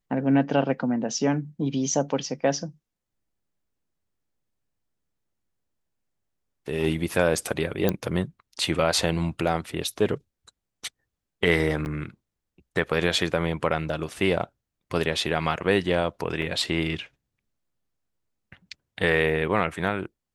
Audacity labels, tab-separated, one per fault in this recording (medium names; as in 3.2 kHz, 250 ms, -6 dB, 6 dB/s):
7.890000	7.890000	pop -9 dBFS
11.850000	11.860000	dropout 9.7 ms
16.420000	16.420000	dropout 2.5 ms